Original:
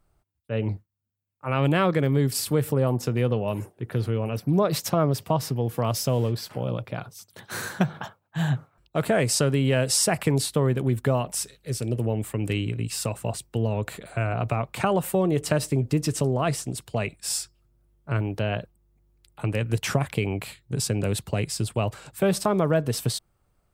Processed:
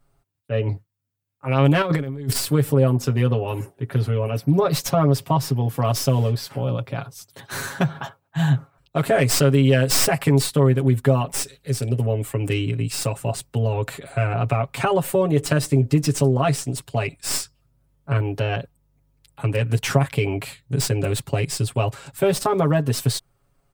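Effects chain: tracing distortion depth 0.065 ms; comb 7.3 ms, depth 91%; 1.82–2.33 s: compressor with a negative ratio -23 dBFS, ratio -0.5; trim +1 dB

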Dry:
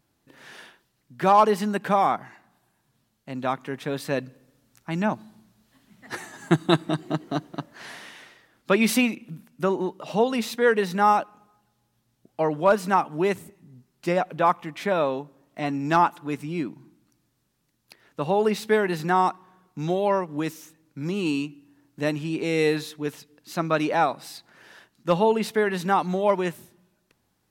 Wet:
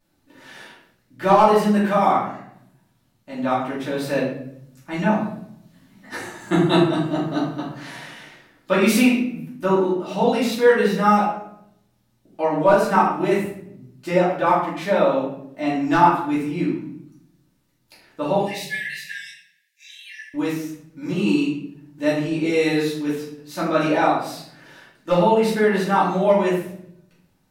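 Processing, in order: 18.37–20.34 s: brick-wall FIR high-pass 1.6 kHz; simulated room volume 140 m³, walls mixed, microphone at 2.6 m; trim -5.5 dB

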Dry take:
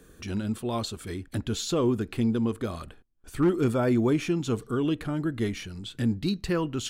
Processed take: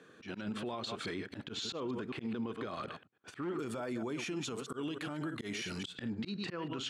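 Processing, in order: chunks repeated in reverse 106 ms, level -11 dB; low-pass 3.4 kHz 12 dB/octave, from 3.59 s 9.4 kHz, from 5.95 s 3.5 kHz; gate -46 dBFS, range -8 dB; high-pass 120 Hz 24 dB/octave; bass shelf 410 Hz -11 dB; slow attack 246 ms; compression 6:1, threshold -42 dBFS, peak gain reduction 15.5 dB; peak limiter -40.5 dBFS, peak gain reduction 10.5 dB; trim +10.5 dB

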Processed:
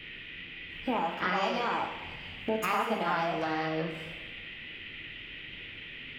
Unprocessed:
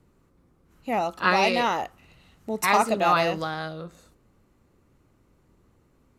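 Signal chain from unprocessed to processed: peaking EQ 9.4 kHz -14.5 dB 2.7 oct; compression 4:1, threshold -38 dBFS, peak gain reduction 17.5 dB; band noise 1.5–2.7 kHz -53 dBFS; formant shift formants +3 st; two-slope reverb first 0.94 s, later 2.4 s, DRR 2 dB; trim +6.5 dB

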